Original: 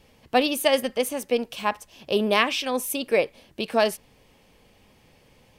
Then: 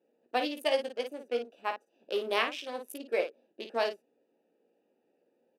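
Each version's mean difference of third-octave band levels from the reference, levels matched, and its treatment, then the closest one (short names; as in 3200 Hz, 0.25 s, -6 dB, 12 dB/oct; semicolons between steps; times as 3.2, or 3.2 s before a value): 6.5 dB: Wiener smoothing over 41 samples; HPF 300 Hz 24 dB/oct; on a send: early reflections 17 ms -6.5 dB, 54 ms -7.5 dB; on the sum: gain -8.5 dB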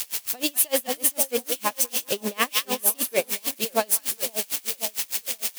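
12.5 dB: switching spikes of -14 dBFS; split-band echo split 940 Hz, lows 0.524 s, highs 0.194 s, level -7 dB; dB-linear tremolo 6.6 Hz, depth 30 dB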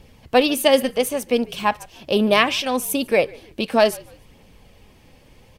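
2.0 dB: phaser 0.68 Hz, delay 4 ms, feedback 28%; low shelf 180 Hz +6.5 dB; on a send: frequency-shifting echo 0.147 s, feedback 35%, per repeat -61 Hz, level -24 dB; on the sum: gain +3.5 dB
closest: third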